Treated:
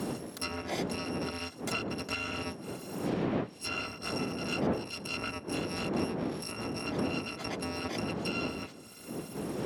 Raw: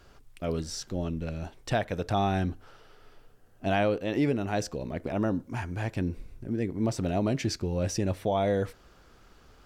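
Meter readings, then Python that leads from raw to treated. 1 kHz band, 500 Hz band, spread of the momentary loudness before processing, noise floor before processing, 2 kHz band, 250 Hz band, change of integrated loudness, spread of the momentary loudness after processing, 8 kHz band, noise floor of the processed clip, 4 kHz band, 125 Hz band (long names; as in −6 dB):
−5.5 dB, −6.0 dB, 9 LU, −57 dBFS, +0.5 dB, −4.0 dB, −5.0 dB, 6 LU, −2.0 dB, −49 dBFS, +3.0 dB, −8.5 dB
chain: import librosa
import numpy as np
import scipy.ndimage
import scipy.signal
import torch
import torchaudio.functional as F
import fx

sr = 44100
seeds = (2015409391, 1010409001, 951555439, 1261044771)

y = fx.bit_reversed(x, sr, seeds[0], block=256)
y = fx.dmg_wind(y, sr, seeds[1], corner_hz=310.0, level_db=-35.0)
y = scipy.signal.sosfilt(scipy.signal.butter(2, 180.0, 'highpass', fs=sr, output='sos'), y)
y = fx.rider(y, sr, range_db=5, speed_s=0.5)
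y = fx.env_lowpass_down(y, sr, base_hz=2200.0, full_db=-25.0)
y = fx.band_squash(y, sr, depth_pct=70)
y = y * librosa.db_to_amplitude(2.5)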